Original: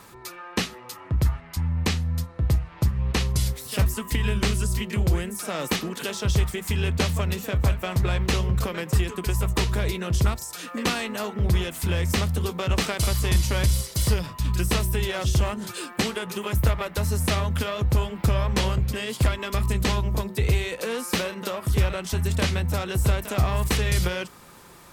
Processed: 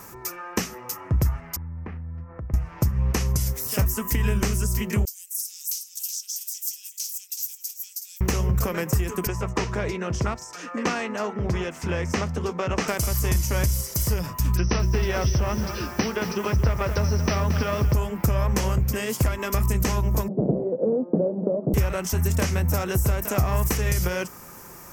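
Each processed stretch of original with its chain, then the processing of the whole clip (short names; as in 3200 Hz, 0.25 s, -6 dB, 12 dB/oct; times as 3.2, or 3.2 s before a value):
1.56–2.54 LPF 2100 Hz 24 dB/oct + compressor 4:1, threshold -38 dBFS
5.05–8.21 inverse Chebyshev high-pass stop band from 800 Hz, stop band 80 dB + echo 0.373 s -8 dB
9.27–12.88 HPF 230 Hz 6 dB/oct + air absorption 130 m
14.57–17.94 brick-wall FIR low-pass 6100 Hz + lo-fi delay 0.225 s, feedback 55%, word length 7-bit, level -11 dB
20.28–21.74 half-waves squared off + elliptic band-pass 150–610 Hz, stop band 80 dB
whole clip: resonant high shelf 4500 Hz +9 dB, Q 3; compressor, threshold -21 dBFS; band shelf 6400 Hz -10.5 dB; gain +4 dB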